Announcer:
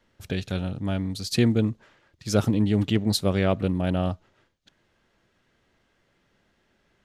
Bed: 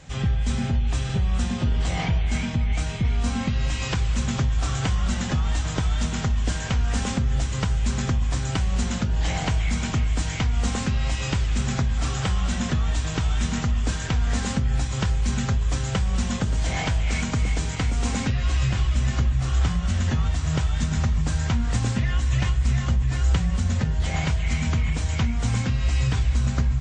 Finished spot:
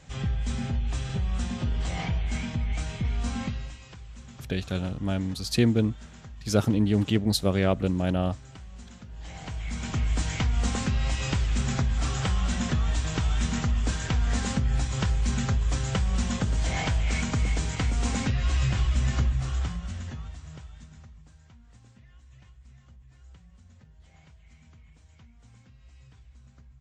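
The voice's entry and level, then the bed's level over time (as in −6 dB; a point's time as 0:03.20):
4.20 s, −1.0 dB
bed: 0:03.46 −5.5 dB
0:03.84 −21 dB
0:09.03 −21 dB
0:10.10 −2.5 dB
0:19.23 −2.5 dB
0:21.39 −31 dB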